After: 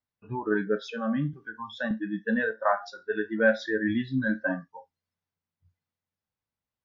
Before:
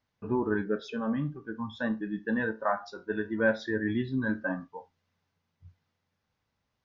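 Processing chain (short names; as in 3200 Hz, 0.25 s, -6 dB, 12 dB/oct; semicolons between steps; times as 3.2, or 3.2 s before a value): spectral noise reduction 17 dB; 1.33–1.91 three-band squash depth 40%; gain +4 dB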